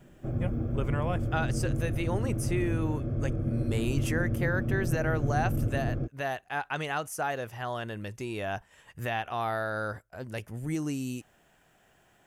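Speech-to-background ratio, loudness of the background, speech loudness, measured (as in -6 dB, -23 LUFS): -2.5 dB, -31.5 LUFS, -34.0 LUFS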